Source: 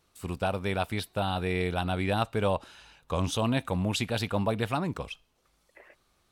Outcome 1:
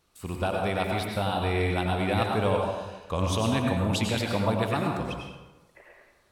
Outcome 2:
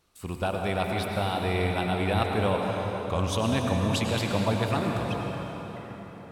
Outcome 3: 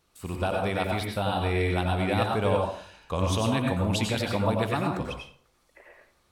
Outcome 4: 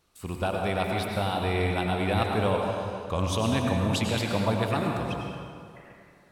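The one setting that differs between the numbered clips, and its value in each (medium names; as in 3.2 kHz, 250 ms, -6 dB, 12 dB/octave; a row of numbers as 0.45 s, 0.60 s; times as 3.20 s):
plate-style reverb, RT60: 1.1 s, 4.9 s, 0.51 s, 2.3 s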